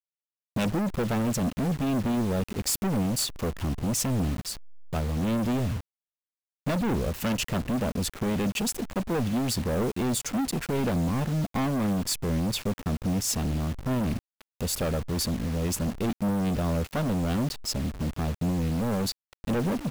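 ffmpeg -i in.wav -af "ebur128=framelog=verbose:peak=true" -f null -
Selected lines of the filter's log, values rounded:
Integrated loudness:
  I:         -28.3 LUFS
  Threshold: -38.4 LUFS
Loudness range:
  LRA:         2.1 LU
  Threshold: -48.5 LUFS
  LRA low:   -29.6 LUFS
  LRA high:  -27.5 LUFS
True peak:
  Peak:      -19.5 dBFS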